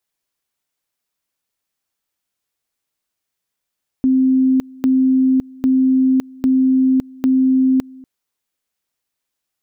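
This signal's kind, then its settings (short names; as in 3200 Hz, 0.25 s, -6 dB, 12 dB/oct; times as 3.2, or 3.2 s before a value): two-level tone 261 Hz -10.5 dBFS, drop 24.5 dB, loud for 0.56 s, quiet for 0.24 s, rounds 5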